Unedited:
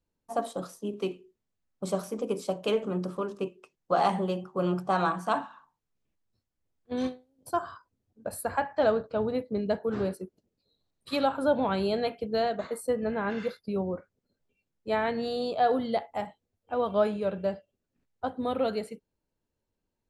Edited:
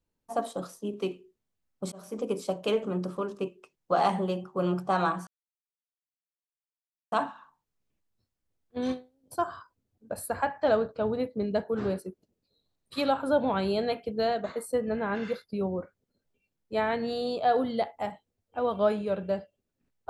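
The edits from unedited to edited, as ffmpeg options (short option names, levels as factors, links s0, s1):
-filter_complex "[0:a]asplit=3[s0][s1][s2];[s0]atrim=end=1.92,asetpts=PTS-STARTPTS,afade=t=out:st=1.916:d=0.004:c=hsin[s3];[s1]atrim=start=1.92:end=5.27,asetpts=PTS-STARTPTS,afade=t=in:d=0.28,afade=t=out:st=3.346:d=0.004:c=hsin,apad=pad_dur=1.85[s4];[s2]atrim=start=5.27,asetpts=PTS-STARTPTS,afade=t=in:d=0.004:c=hsin[s5];[s3][s4][s5]concat=n=3:v=0:a=1"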